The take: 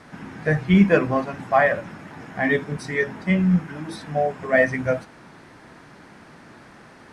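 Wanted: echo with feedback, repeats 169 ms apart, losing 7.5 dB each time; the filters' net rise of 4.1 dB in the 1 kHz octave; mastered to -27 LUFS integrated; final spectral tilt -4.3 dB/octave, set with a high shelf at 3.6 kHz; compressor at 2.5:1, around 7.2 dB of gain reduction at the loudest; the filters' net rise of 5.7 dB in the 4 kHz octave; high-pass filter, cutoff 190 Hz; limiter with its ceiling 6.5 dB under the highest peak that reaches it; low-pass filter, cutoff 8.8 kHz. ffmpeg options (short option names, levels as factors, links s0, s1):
-af "highpass=190,lowpass=8800,equalizer=f=1000:t=o:g=5.5,highshelf=f=3600:g=3.5,equalizer=f=4000:t=o:g=5,acompressor=threshold=0.1:ratio=2.5,alimiter=limit=0.178:level=0:latency=1,aecho=1:1:169|338|507|676|845:0.422|0.177|0.0744|0.0312|0.0131,volume=0.944"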